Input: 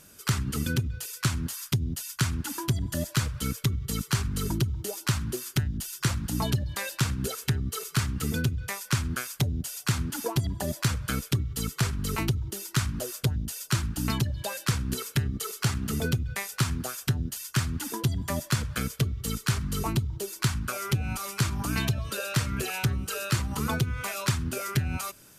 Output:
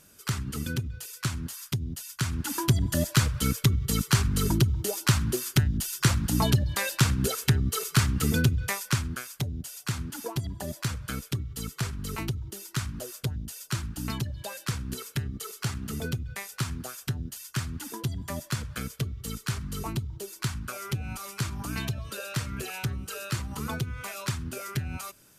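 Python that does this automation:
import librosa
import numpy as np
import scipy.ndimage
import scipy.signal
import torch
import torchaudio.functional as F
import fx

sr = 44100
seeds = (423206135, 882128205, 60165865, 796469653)

y = fx.gain(x, sr, db=fx.line((2.19, -3.5), (2.59, 4.0), (8.71, 4.0), (9.2, -4.5)))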